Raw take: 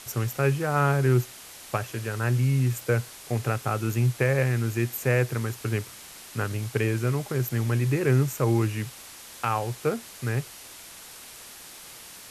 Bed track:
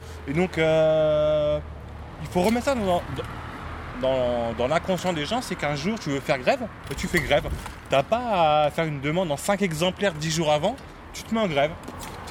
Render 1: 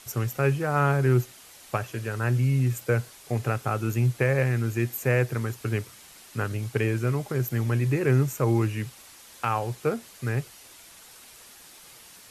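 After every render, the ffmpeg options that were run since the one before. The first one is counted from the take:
-af "afftdn=nr=6:nf=-45"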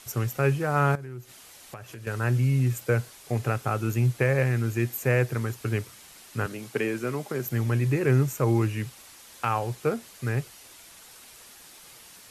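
-filter_complex "[0:a]asettb=1/sr,asplit=3[a][b][c];[a]atrim=end=0.954[d];[b]atrim=start=0.95:end=2.07,asetpts=PTS-STARTPTS,afade=t=in:d=0.004:c=qsin,afade=t=out:st=1.116:d=0.004:c=qsin,acompressor=threshold=-39dB:ratio=4:attack=3.2:release=140:knee=1:detection=peak[e];[c]atrim=start=2.066[f];[d][e]acrossfade=d=0.004:c1=hsin:c2=qsin[g];[g][f]acrossfade=d=0.004:c1=qsin:c2=hsin,asettb=1/sr,asplit=3[h][i][j];[h]atrim=end=6.464[k];[i]atrim=start=6.46:end=7.46,asetpts=PTS-STARTPTS,afade=t=in:d=0.004:c=qsin,afade=t=out:st=0.996:d=0.004:c=qsin,highpass=f=170:w=0.5412,highpass=f=170:w=1.3066[l];[j]atrim=start=7.456[m];[k][l]acrossfade=d=0.004:c1=hsin:c2=qsin[n];[n][m]acrossfade=d=0.004:c1=qsin:c2=hsin"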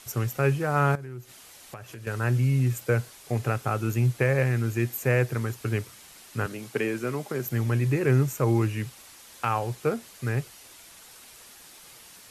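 -af anull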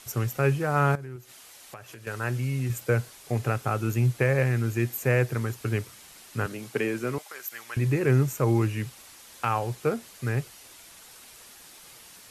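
-filter_complex "[0:a]asettb=1/sr,asplit=3[a][b][c];[a]atrim=end=1.164[d];[b]atrim=start=1.16:end=2.7,asetpts=PTS-STARTPTS,afade=t=in:d=0.004:c=qsin,afade=t=out:st=1.536:d=0.004:c=qsin,lowshelf=f=300:g=-7[e];[c]atrim=start=2.696[f];[d][e]acrossfade=d=0.004:c1=hsin:c2=qsin[g];[g][f]acrossfade=d=0.004:c1=qsin:c2=hsin,asettb=1/sr,asplit=3[h][i][j];[h]atrim=end=7.184[k];[i]atrim=start=7.18:end=7.77,asetpts=PTS-STARTPTS,afade=t=in:d=0.004:c=qsin,afade=t=out:st=0.586:d=0.004:c=qsin,highpass=1.2k[l];[j]atrim=start=7.766[m];[k][l]acrossfade=d=0.004:c1=hsin:c2=qsin[n];[n][m]acrossfade=d=0.004:c1=qsin:c2=hsin"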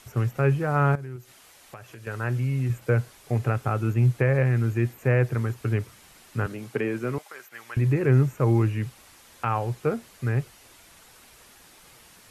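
-filter_complex "[0:a]lowshelf=f=140:g=5.5,acrossover=split=2700[a][b];[b]acompressor=threshold=-51dB:ratio=4:attack=1:release=60[c];[a][c]amix=inputs=2:normalize=0"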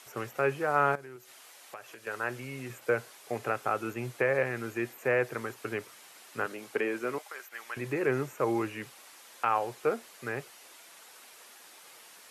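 -af "highpass=410"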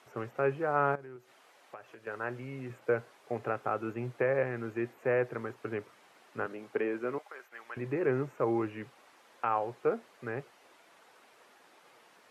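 -af "lowpass=f=1.1k:p=1"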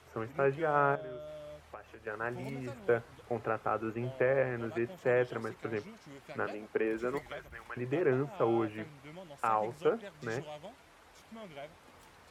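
-filter_complex "[1:a]volume=-24.5dB[a];[0:a][a]amix=inputs=2:normalize=0"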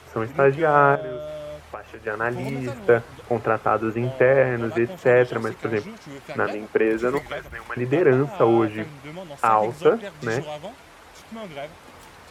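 -af "volume=12dB"

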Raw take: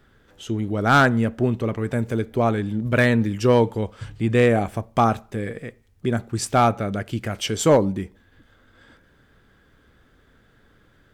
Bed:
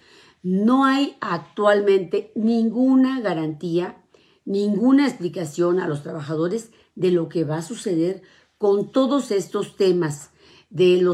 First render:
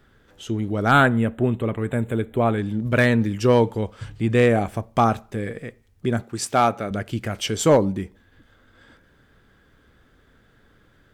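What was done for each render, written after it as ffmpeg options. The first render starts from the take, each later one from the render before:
-filter_complex "[0:a]asettb=1/sr,asplit=3[a][b][c];[a]atrim=end=0.914[d];[b]atrim=start=0.91:end=2.59,asetpts=PTS-STARTPTS,afade=t=in:d=0.004:c=qsin,afade=t=out:st=1.676:d=0.004:c=qsin,asuperstop=centerf=5300:order=8:qfactor=1.7[e];[c]atrim=start=2.586[f];[d][e]acrossfade=d=0.004:c1=hsin:c2=qsin[g];[g][f]acrossfade=d=0.004:c1=qsin:c2=hsin,asettb=1/sr,asplit=3[h][i][j];[h]atrim=end=6.234[k];[i]atrim=start=6.23:end=6.91,asetpts=PTS-STARTPTS,afade=t=in:d=0.004:c=qsin,afade=t=out:st=0.676:d=0.004:c=qsin,highpass=f=250:p=1[l];[j]atrim=start=6.906[m];[k][l]acrossfade=d=0.004:c1=hsin:c2=qsin[n];[n][m]acrossfade=d=0.004:c1=qsin:c2=hsin"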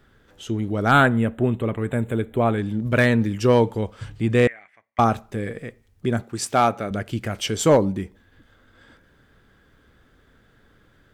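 -filter_complex "[0:a]asettb=1/sr,asplit=3[a][b][c];[a]atrim=end=4.474[d];[b]atrim=start=4.47:end=4.99,asetpts=PTS-STARTPTS,afade=t=in:d=0.004:c=qsin,afade=t=out:st=0.516:d=0.004:c=qsin,bandpass=f=2k:t=q:w=9.6[e];[c]atrim=start=4.986[f];[d][e]acrossfade=d=0.004:c1=hsin:c2=qsin[g];[g][f]acrossfade=d=0.004:c1=qsin:c2=hsin"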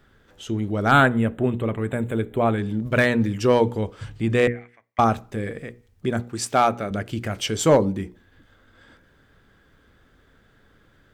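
-af "equalizer=f=11k:w=2.5:g=-2.5,bandreject=f=60:t=h:w=6,bandreject=f=120:t=h:w=6,bandreject=f=180:t=h:w=6,bandreject=f=240:t=h:w=6,bandreject=f=300:t=h:w=6,bandreject=f=360:t=h:w=6,bandreject=f=420:t=h:w=6,bandreject=f=480:t=h:w=6"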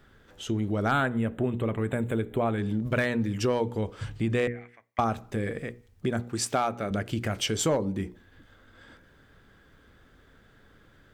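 -af "acompressor=threshold=-25dB:ratio=3"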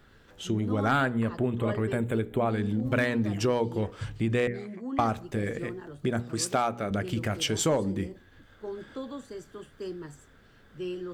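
-filter_complex "[1:a]volume=-19.5dB[a];[0:a][a]amix=inputs=2:normalize=0"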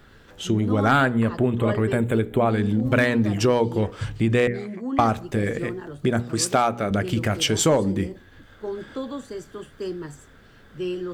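-af "volume=6.5dB"

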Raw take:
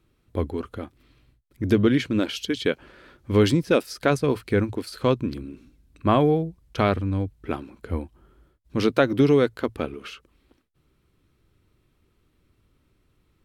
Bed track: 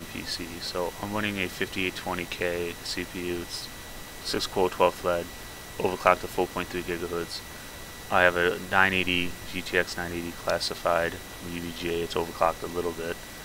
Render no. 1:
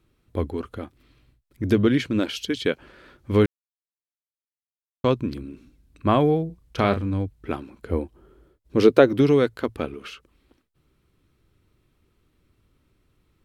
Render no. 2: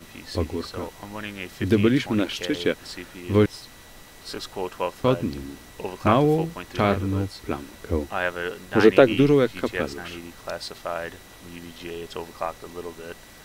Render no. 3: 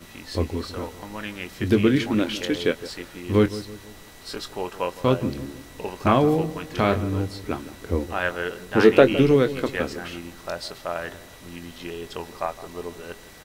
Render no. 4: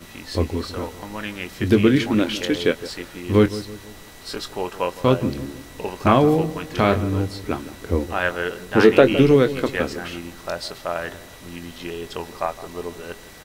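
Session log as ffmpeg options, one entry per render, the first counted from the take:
-filter_complex "[0:a]asettb=1/sr,asplit=3[a][b][c];[a]atrim=end=6.464[d];[b]atrim=start=6.46:end=7.14,asetpts=PTS-STARTPTS,afade=t=in:d=0.004:c=qsin,afade=t=out:st=0.676:d=0.004:c=qsin,asplit=2[e][f];[f]adelay=35,volume=-9dB[g];[e][g]amix=inputs=2:normalize=0,atrim=end_sample=29988[h];[c]atrim=start=7.136[i];[d][h]acrossfade=d=0.004:c1=hsin:c2=qsin[j];[j][i]acrossfade=d=0.004:c1=qsin:c2=hsin,asettb=1/sr,asplit=3[k][l][m];[k]atrim=end=7.894[n];[l]atrim=start=7.89:end=9.09,asetpts=PTS-STARTPTS,afade=t=in:d=0.004:c=qsin,afade=t=out:st=1.196:d=0.004:c=qsin,equalizer=f=420:w=1.5:g=9[o];[m]atrim=start=9.086[p];[n][o]acrossfade=d=0.004:c1=hsin:c2=qsin[q];[q][p]acrossfade=d=0.004:c1=qsin:c2=hsin,asplit=3[r][s][t];[r]atrim=end=3.46,asetpts=PTS-STARTPTS,afade=t=out:st=3.456:d=0.004:c=hsin[u];[s]atrim=start=3.46:end=5.04,asetpts=PTS-STARTPTS,volume=0[v];[t]atrim=start=5.04,asetpts=PTS-STARTPTS,afade=t=in:d=0.004:c=hsin[w];[u][v][w]concat=n=3:v=0:a=1"
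-filter_complex "[1:a]volume=-5.5dB[a];[0:a][a]amix=inputs=2:normalize=0"
-filter_complex "[0:a]asplit=2[a][b];[b]adelay=23,volume=-11.5dB[c];[a][c]amix=inputs=2:normalize=0,asplit=2[d][e];[e]adelay=162,lowpass=f=1.1k:p=1,volume=-14.5dB,asplit=2[f][g];[g]adelay=162,lowpass=f=1.1k:p=1,volume=0.46,asplit=2[h][i];[i]adelay=162,lowpass=f=1.1k:p=1,volume=0.46,asplit=2[j][k];[k]adelay=162,lowpass=f=1.1k:p=1,volume=0.46[l];[d][f][h][j][l]amix=inputs=5:normalize=0"
-af "volume=3dB,alimiter=limit=-2dB:level=0:latency=1"

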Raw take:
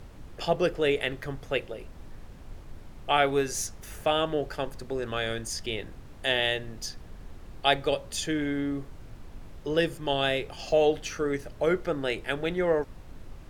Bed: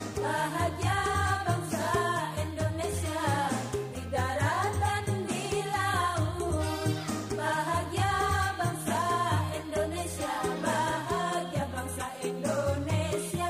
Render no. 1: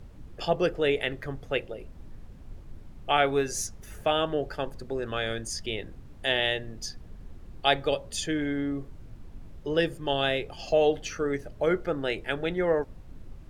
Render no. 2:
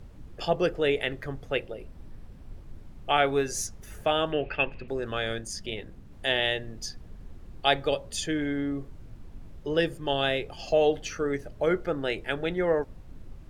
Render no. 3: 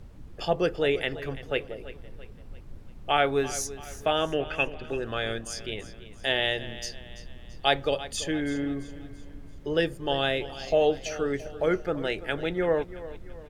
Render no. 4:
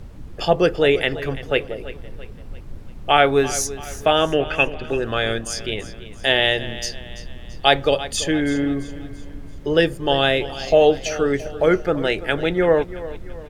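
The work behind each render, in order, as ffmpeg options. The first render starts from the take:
-af "afftdn=nr=7:nf=-46"
-filter_complex "[0:a]asettb=1/sr,asplit=3[a][b][c];[a]atrim=end=1.504[d];[b]atrim=start=1.5:end=2.64,asetpts=PTS-STARTPTS,afade=t=in:d=0.004:c=qsin,afade=t=out:st=1.136:d=0.004:c=qsin,bandreject=f=6.7k:w=12[e];[c]atrim=start=2.636[f];[d][e]acrossfade=d=0.004:c1=hsin:c2=qsin[g];[g][f]acrossfade=d=0.004:c1=qsin:c2=hsin,asettb=1/sr,asplit=3[h][i][j];[h]atrim=end=4.324[k];[i]atrim=start=4.32:end=4.88,asetpts=PTS-STARTPTS,afade=t=in:d=0.004:c=qsin,afade=t=out:st=0.556:d=0.004:c=qsin,lowpass=f=2.6k:t=q:w=14[l];[j]atrim=start=4.876[m];[k][l]acrossfade=d=0.004:c1=hsin:c2=qsin[n];[n][m]acrossfade=d=0.004:c1=qsin:c2=hsin,asplit=3[o][p][q];[o]afade=t=out:st=5.38:d=0.02[r];[p]tremolo=f=200:d=0.519,afade=t=in:st=5.38:d=0.02,afade=t=out:st=6.11:d=0.02[s];[q]afade=t=in:st=6.11:d=0.02[t];[r][s][t]amix=inputs=3:normalize=0"
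-af "aecho=1:1:336|672|1008|1344:0.168|0.0755|0.034|0.0153"
-af "volume=8.5dB,alimiter=limit=-1dB:level=0:latency=1"

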